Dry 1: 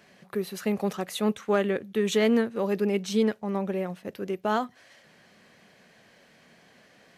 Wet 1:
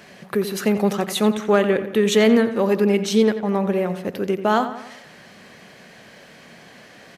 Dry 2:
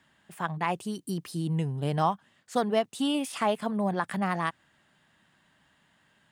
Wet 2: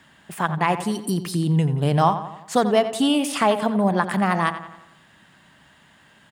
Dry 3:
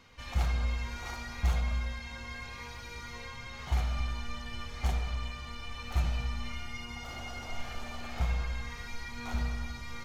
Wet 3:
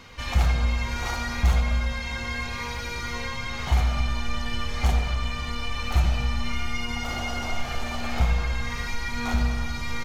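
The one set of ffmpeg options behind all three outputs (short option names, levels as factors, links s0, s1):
-filter_complex "[0:a]asplit=2[s0][s1];[s1]acompressor=threshold=0.0141:ratio=6,volume=0.891[s2];[s0][s2]amix=inputs=2:normalize=0,asplit=2[s3][s4];[s4]adelay=88,lowpass=f=3900:p=1,volume=0.282,asplit=2[s5][s6];[s6]adelay=88,lowpass=f=3900:p=1,volume=0.52,asplit=2[s7][s8];[s8]adelay=88,lowpass=f=3900:p=1,volume=0.52,asplit=2[s9][s10];[s10]adelay=88,lowpass=f=3900:p=1,volume=0.52,asplit=2[s11][s12];[s12]adelay=88,lowpass=f=3900:p=1,volume=0.52,asplit=2[s13][s14];[s14]adelay=88,lowpass=f=3900:p=1,volume=0.52[s15];[s3][s5][s7][s9][s11][s13][s15]amix=inputs=7:normalize=0,volume=2"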